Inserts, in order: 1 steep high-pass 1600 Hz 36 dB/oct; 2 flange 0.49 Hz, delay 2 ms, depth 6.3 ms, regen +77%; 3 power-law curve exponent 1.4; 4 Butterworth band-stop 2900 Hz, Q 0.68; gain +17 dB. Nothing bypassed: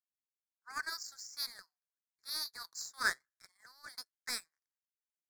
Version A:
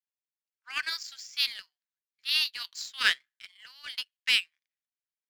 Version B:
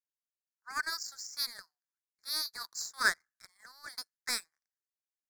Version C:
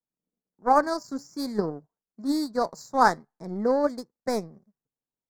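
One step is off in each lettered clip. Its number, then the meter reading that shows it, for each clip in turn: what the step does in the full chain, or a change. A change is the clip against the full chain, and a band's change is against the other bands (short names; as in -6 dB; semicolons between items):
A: 4, momentary loudness spread change +2 LU; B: 2, loudness change +4.5 LU; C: 1, 250 Hz band +31.0 dB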